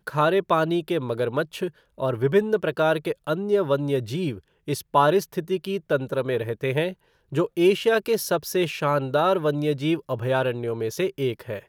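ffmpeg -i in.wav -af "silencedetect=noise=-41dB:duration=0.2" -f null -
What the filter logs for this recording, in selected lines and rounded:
silence_start: 1.70
silence_end: 1.98 | silence_duration: 0.28
silence_start: 4.39
silence_end: 4.68 | silence_duration: 0.29
silence_start: 6.94
silence_end: 7.32 | silence_duration: 0.39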